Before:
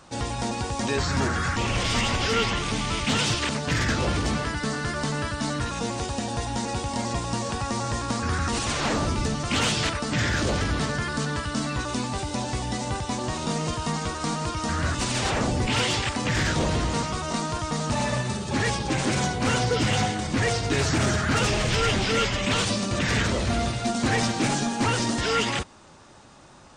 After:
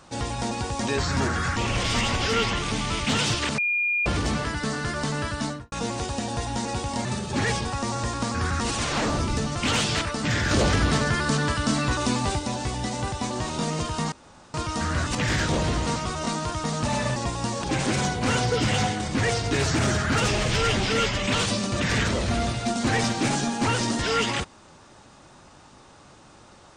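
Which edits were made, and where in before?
3.58–4.06 s: bleep 2.42 kHz -21 dBFS
5.41–5.72 s: studio fade out
7.05–7.53 s: swap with 18.23–18.83 s
10.39–12.27 s: gain +4 dB
14.00–14.42 s: room tone
15.03–16.22 s: delete

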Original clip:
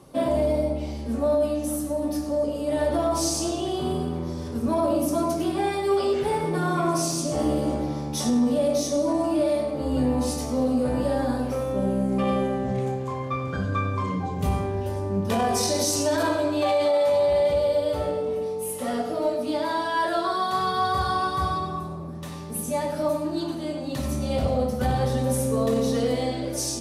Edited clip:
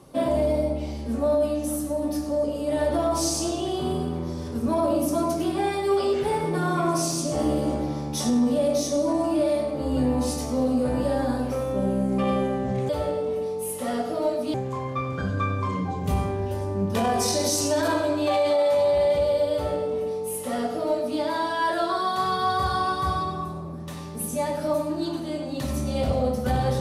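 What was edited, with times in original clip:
17.89–19.54 s: copy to 12.89 s

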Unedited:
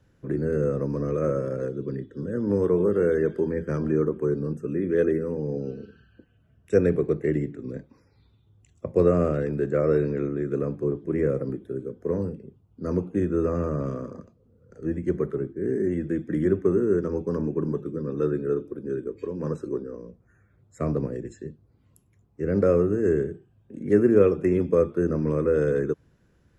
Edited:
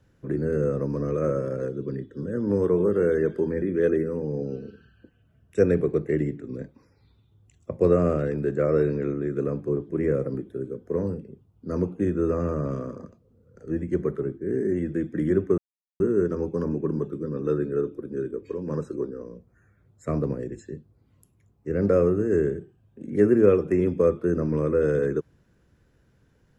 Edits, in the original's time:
3.62–4.77 s: delete
16.73 s: insert silence 0.42 s

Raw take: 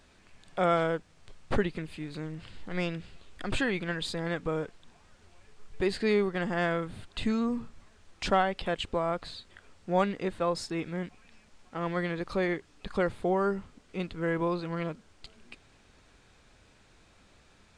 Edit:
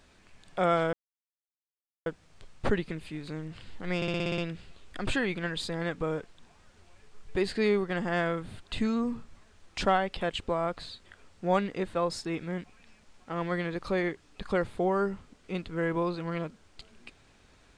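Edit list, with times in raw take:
0.93 s: insert silence 1.13 s
2.83 s: stutter 0.06 s, 8 plays

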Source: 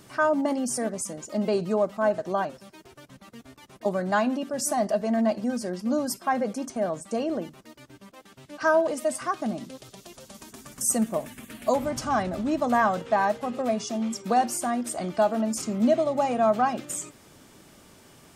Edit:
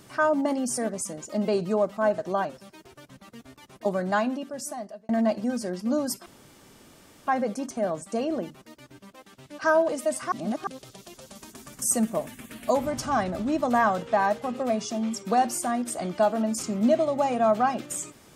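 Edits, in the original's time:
4.06–5.09 s: fade out
6.26 s: insert room tone 1.01 s
9.31–9.66 s: reverse

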